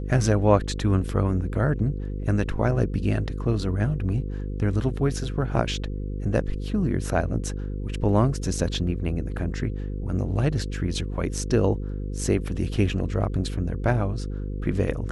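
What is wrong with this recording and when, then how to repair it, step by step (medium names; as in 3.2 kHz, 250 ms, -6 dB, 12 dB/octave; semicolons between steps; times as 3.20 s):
buzz 50 Hz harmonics 10 -30 dBFS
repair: de-hum 50 Hz, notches 10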